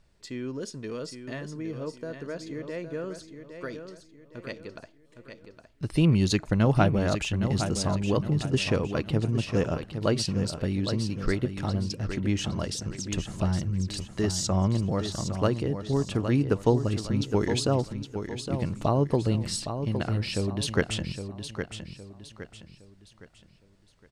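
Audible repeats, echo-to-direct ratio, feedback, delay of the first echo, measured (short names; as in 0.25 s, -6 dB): 4, -8.0 dB, 37%, 0.813 s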